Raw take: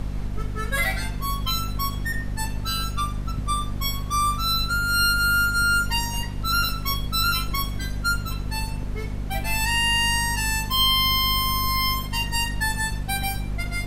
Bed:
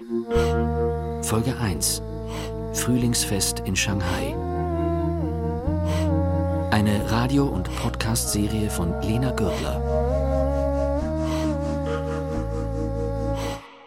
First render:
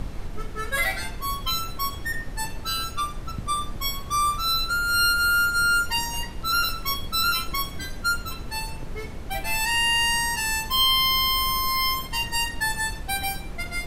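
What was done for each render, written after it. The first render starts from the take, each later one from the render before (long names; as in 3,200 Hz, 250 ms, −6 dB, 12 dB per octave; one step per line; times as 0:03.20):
hum removal 50 Hz, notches 5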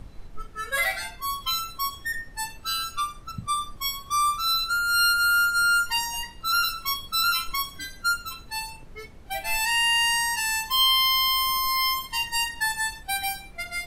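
noise reduction from a noise print 12 dB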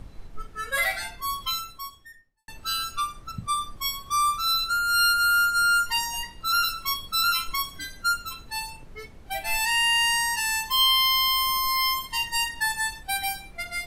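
0:01.42–0:02.48: fade out quadratic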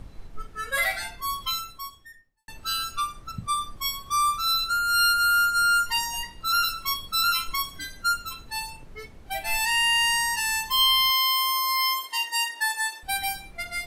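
0:11.10–0:13.03: high-pass filter 370 Hz 24 dB per octave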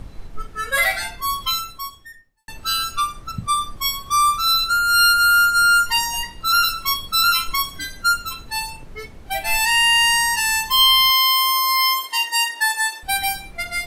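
level +6.5 dB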